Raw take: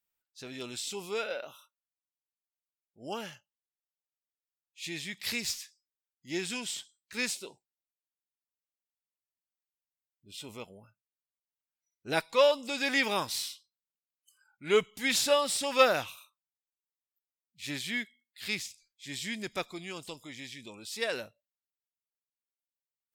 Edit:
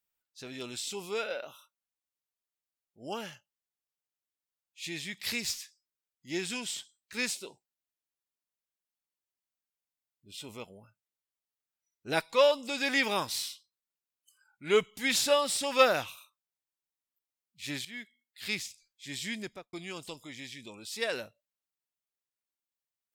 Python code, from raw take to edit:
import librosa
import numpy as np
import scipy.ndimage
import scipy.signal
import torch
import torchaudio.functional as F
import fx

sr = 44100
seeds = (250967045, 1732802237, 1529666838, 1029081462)

y = fx.studio_fade_out(x, sr, start_s=19.36, length_s=0.37)
y = fx.edit(y, sr, fx.fade_in_from(start_s=17.85, length_s=0.61, floor_db=-14.5), tone=tone)